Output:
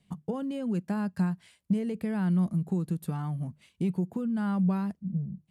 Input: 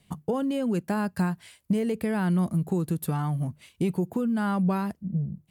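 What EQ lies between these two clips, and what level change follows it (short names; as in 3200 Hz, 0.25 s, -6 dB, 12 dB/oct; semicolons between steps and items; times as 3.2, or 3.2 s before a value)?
Bessel low-pass 9600 Hz, order 2; bell 190 Hz +7 dB 0.61 oct; -7.5 dB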